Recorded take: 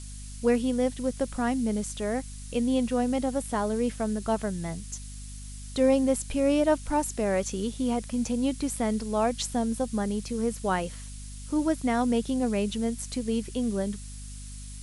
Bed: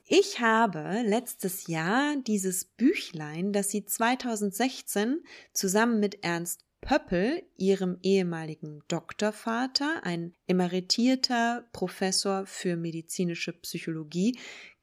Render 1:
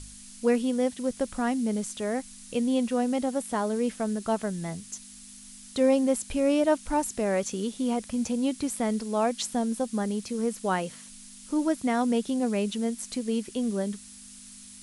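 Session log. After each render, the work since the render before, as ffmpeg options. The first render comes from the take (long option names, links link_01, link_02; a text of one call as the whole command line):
ffmpeg -i in.wav -af "bandreject=frequency=50:width_type=h:width=4,bandreject=frequency=100:width_type=h:width=4,bandreject=frequency=150:width_type=h:width=4" out.wav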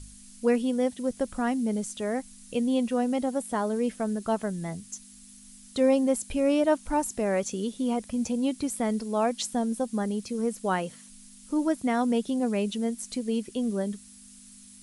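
ffmpeg -i in.wav -af "afftdn=noise_reduction=6:noise_floor=-47" out.wav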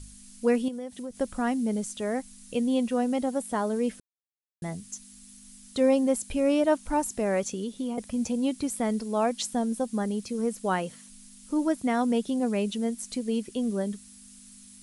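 ffmpeg -i in.wav -filter_complex "[0:a]asettb=1/sr,asplit=3[link_01][link_02][link_03];[link_01]atrim=end=0.684[link_04];[link_02]atrim=start=0.68:end=1.19,asetpts=PTS-STARTPTS,afade=type=in:duration=0.004:curve=qsin,afade=type=out:start_time=0.506:duration=0.004:curve=qsin,acompressor=threshold=-34dB:ratio=4:attack=3.2:release=140:knee=1:detection=peak[link_05];[link_03]atrim=start=1.186[link_06];[link_04][link_05]acrossfade=duration=0.004:curve1=hsin:curve2=qsin[link_07];[link_07][link_06]acrossfade=duration=0.004:curve1=qsin:curve2=hsin,asettb=1/sr,asplit=3[link_08][link_09][link_10];[link_08]atrim=end=7.514[link_11];[link_09]atrim=start=7.51:end=7.98,asetpts=PTS-STARTPTS,afade=type=in:duration=0.004:curve=qsin,afade=type=out:start_time=0.466:duration=0.004:curve=qsin,acrossover=split=530|5600[link_12][link_13][link_14];[link_12]acompressor=threshold=-30dB:ratio=4[link_15];[link_13]acompressor=threshold=-44dB:ratio=4[link_16];[link_14]acompressor=threshold=-53dB:ratio=4[link_17];[link_15][link_16][link_17]amix=inputs=3:normalize=0[link_18];[link_10]atrim=start=7.976[link_19];[link_11][link_18]acrossfade=duration=0.004:curve1=hsin:curve2=qsin[link_20];[link_20][link_19]acrossfade=duration=0.004:curve1=qsin:curve2=hsin,asplit=3[link_21][link_22][link_23];[link_21]atrim=end=4,asetpts=PTS-STARTPTS,afade=type=out:start_time=3.996:duration=0.004:curve=hsin[link_24];[link_22]atrim=start=4:end=4.62,asetpts=PTS-STARTPTS,volume=0[link_25];[link_23]atrim=start=4.62,asetpts=PTS-STARTPTS,afade=type=in:duration=0.004:curve=hsin[link_26];[link_24][link_25][link_26]concat=n=3:v=0:a=1" out.wav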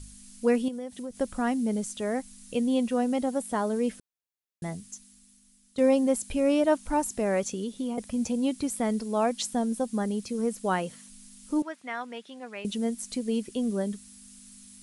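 ffmpeg -i in.wav -filter_complex "[0:a]asettb=1/sr,asplit=3[link_01][link_02][link_03];[link_01]atrim=end=11.624[link_04];[link_02]atrim=start=11.62:end=12.65,asetpts=PTS-STARTPTS,afade=type=in:duration=0.004:curve=qsin,afade=type=out:start_time=1.026:duration=0.004:curve=qsin,bandpass=frequency=1900:width_type=q:width=1.1[link_05];[link_03]atrim=start=12.646[link_06];[link_04][link_05]acrossfade=duration=0.004:curve1=hsin:curve2=qsin[link_07];[link_07][link_06]acrossfade=duration=0.004:curve1=qsin:curve2=hsin,asplit=2[link_08][link_09];[link_08]atrim=end=5.78,asetpts=PTS-STARTPTS,afade=type=out:start_time=4.68:duration=1.1:curve=qua:silence=0.223872[link_10];[link_09]atrim=start=5.78,asetpts=PTS-STARTPTS,afade=type=in:duration=0.004:curve=hsin:silence=0.223872[link_11];[link_10][link_11]concat=n=2:v=0:a=1" out.wav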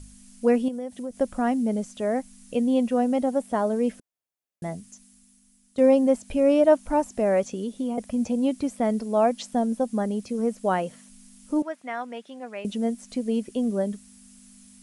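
ffmpeg -i in.wav -filter_complex "[0:a]equalizer=frequency=250:width_type=o:width=0.67:gain=3,equalizer=frequency=630:width_type=o:width=0.67:gain=7,equalizer=frequency=4000:width_type=o:width=0.67:gain=-4,acrossover=split=6000[link_01][link_02];[link_02]acompressor=threshold=-51dB:ratio=4:attack=1:release=60[link_03];[link_01][link_03]amix=inputs=2:normalize=0" out.wav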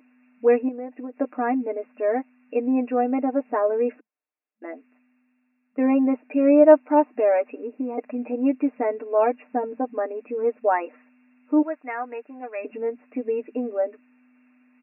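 ffmpeg -i in.wav -af "afftfilt=real='re*between(b*sr/4096,220,2800)':imag='im*between(b*sr/4096,220,2800)':win_size=4096:overlap=0.75,aecho=1:1:6.6:0.87" out.wav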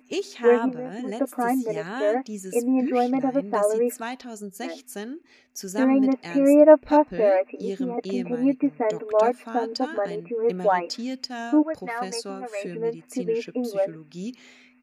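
ffmpeg -i in.wav -i bed.wav -filter_complex "[1:a]volume=-7dB[link_01];[0:a][link_01]amix=inputs=2:normalize=0" out.wav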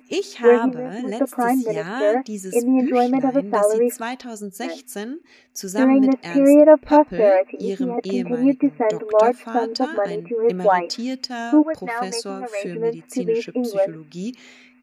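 ffmpeg -i in.wav -af "volume=4.5dB,alimiter=limit=-3dB:level=0:latency=1" out.wav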